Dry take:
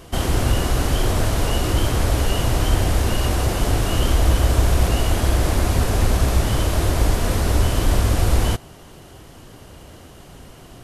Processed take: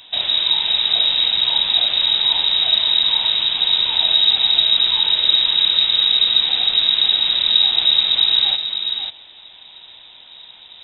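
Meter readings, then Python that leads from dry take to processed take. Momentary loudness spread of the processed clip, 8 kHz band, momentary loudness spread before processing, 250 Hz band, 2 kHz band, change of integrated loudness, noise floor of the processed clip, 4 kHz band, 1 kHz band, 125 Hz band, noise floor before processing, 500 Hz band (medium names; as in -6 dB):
4 LU, under -40 dB, 3 LU, under -15 dB, +1.0 dB, +7.0 dB, -43 dBFS, +19.5 dB, -6.5 dB, under -25 dB, -43 dBFS, -14.5 dB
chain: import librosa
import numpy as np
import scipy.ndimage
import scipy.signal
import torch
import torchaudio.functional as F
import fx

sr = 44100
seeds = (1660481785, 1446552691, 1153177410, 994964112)

y = x + 10.0 ** (-7.0 / 20.0) * np.pad(x, (int(541 * sr / 1000.0), 0))[:len(x)]
y = fx.freq_invert(y, sr, carrier_hz=3800)
y = y * 10.0 ** (-1.5 / 20.0)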